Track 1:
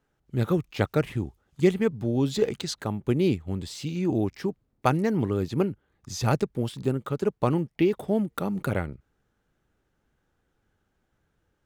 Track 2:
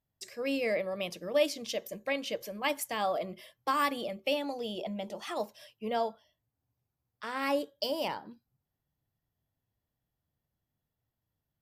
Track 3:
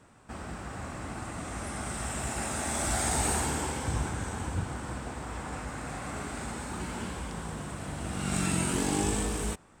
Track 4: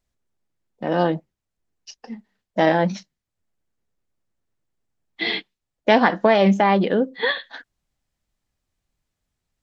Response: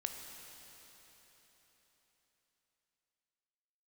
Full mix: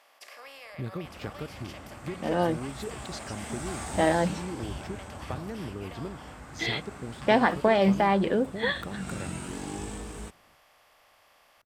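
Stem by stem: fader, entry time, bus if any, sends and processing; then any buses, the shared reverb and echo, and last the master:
+1.0 dB, 0.45 s, no send, compression, threshold -28 dBFS, peak gain reduction 13 dB; auto duck -7 dB, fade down 1.20 s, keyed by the second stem
-10.0 dB, 0.00 s, no send, spectral levelling over time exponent 0.4; high-pass 830 Hz 12 dB/octave; compression, threshold -33 dBFS, peak gain reduction 11 dB
-7.5 dB, 0.75 s, no send, none
-6.0 dB, 1.40 s, no send, none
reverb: none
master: treble shelf 6.5 kHz -5.5 dB

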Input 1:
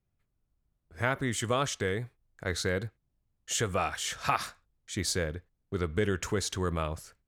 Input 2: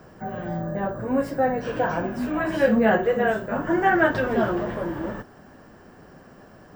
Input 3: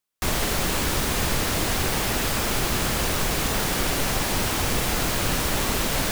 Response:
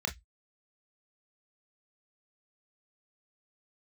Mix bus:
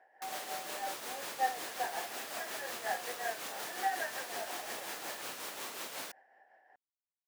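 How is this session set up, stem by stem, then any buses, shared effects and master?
mute
-5.5 dB, 0.00 s, no send, gain riding within 3 dB; two resonant band-passes 1.2 kHz, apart 1.2 oct
-14.5 dB, 0.00 s, no send, none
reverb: none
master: high-pass 440 Hz 12 dB/octave; tremolo 5.5 Hz, depth 45%

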